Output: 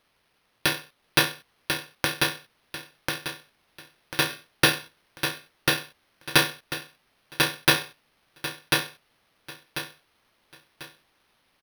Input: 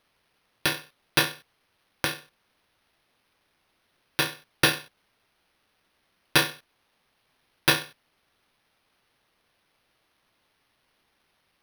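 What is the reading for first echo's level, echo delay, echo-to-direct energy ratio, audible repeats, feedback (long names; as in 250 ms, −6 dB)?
−3.5 dB, 1,043 ms, −3.0 dB, 4, 32%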